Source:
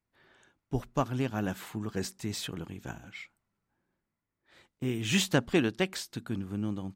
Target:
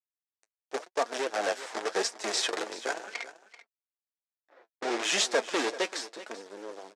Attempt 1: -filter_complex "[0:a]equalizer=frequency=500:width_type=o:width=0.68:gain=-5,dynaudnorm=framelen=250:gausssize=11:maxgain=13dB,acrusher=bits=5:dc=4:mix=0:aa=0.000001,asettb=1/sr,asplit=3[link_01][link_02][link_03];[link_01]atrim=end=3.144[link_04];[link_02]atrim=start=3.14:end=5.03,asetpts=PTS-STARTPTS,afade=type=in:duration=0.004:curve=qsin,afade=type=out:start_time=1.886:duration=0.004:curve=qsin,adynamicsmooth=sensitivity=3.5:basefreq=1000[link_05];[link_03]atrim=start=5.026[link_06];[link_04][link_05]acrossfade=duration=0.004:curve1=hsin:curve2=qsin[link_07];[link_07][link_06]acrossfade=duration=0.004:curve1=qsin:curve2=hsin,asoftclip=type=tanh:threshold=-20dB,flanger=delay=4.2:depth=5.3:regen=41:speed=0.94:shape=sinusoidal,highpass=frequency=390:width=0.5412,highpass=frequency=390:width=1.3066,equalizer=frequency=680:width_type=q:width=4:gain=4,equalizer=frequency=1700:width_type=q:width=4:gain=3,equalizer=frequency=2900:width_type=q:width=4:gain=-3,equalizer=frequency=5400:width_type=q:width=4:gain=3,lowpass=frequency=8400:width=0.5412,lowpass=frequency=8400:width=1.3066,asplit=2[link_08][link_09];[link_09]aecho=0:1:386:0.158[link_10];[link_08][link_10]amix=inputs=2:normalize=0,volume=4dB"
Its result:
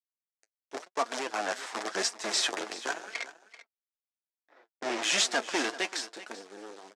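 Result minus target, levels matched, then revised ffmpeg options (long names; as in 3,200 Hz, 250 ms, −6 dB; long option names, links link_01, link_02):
500 Hz band −4.5 dB
-filter_complex "[0:a]equalizer=frequency=500:width_type=o:width=0.68:gain=6.5,dynaudnorm=framelen=250:gausssize=11:maxgain=13dB,acrusher=bits=5:dc=4:mix=0:aa=0.000001,asettb=1/sr,asplit=3[link_01][link_02][link_03];[link_01]atrim=end=3.144[link_04];[link_02]atrim=start=3.14:end=5.03,asetpts=PTS-STARTPTS,afade=type=in:duration=0.004:curve=qsin,afade=type=out:start_time=1.886:duration=0.004:curve=qsin,adynamicsmooth=sensitivity=3.5:basefreq=1000[link_05];[link_03]atrim=start=5.026[link_06];[link_04][link_05]acrossfade=duration=0.004:curve1=hsin:curve2=qsin[link_07];[link_07][link_06]acrossfade=duration=0.004:curve1=qsin:curve2=hsin,asoftclip=type=tanh:threshold=-20dB,flanger=delay=4.2:depth=5.3:regen=41:speed=0.94:shape=sinusoidal,highpass=frequency=390:width=0.5412,highpass=frequency=390:width=1.3066,equalizer=frequency=680:width_type=q:width=4:gain=4,equalizer=frequency=1700:width_type=q:width=4:gain=3,equalizer=frequency=2900:width_type=q:width=4:gain=-3,equalizer=frequency=5400:width_type=q:width=4:gain=3,lowpass=frequency=8400:width=0.5412,lowpass=frequency=8400:width=1.3066,asplit=2[link_08][link_09];[link_09]aecho=0:1:386:0.158[link_10];[link_08][link_10]amix=inputs=2:normalize=0,volume=4dB"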